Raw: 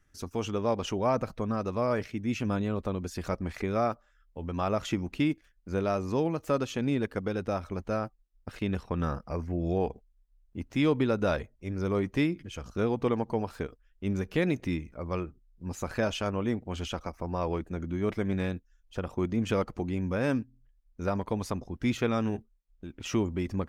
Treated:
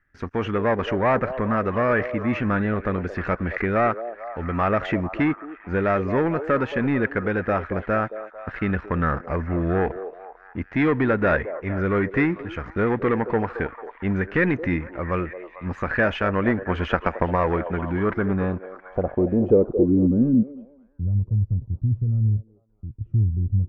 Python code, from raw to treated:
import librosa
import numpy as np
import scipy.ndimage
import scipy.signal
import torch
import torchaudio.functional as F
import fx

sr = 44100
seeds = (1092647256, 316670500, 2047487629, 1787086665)

y = fx.leveller(x, sr, passes=2)
y = fx.filter_sweep_lowpass(y, sr, from_hz=1800.0, to_hz=110.0, start_s=17.93, end_s=21.12, q=3.9)
y = fx.transient(y, sr, attack_db=8, sustain_db=1, at=(16.28, 17.55), fade=0.02)
y = fx.echo_stepped(y, sr, ms=223, hz=500.0, octaves=0.7, feedback_pct=70, wet_db=-8.5)